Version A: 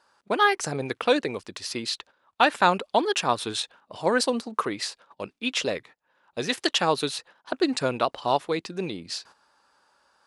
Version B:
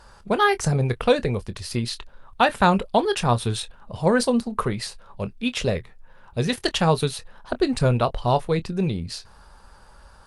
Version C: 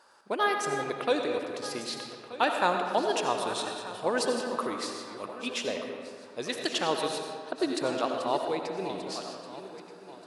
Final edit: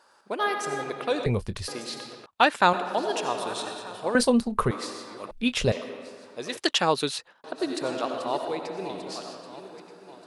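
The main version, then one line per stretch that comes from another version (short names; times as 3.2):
C
1.26–1.68 from B
2.26–2.73 from A
4.15–4.71 from B
5.31–5.72 from B
6.57–7.44 from A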